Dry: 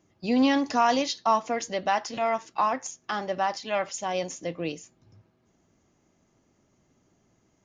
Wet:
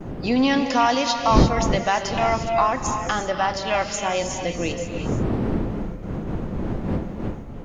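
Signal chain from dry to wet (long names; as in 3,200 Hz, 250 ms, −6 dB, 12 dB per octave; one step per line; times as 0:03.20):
wind on the microphone 260 Hz −30 dBFS
noise gate with hold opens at −32 dBFS
parametric band 2,200 Hz +3 dB 2.4 octaves
in parallel at +3 dB: downward compressor, threshold −30 dBFS, peak gain reduction 18.5 dB
on the sum: bit reduction 12 bits
reverb whose tail is shaped and stops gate 370 ms rising, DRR 5.5 dB
level −1 dB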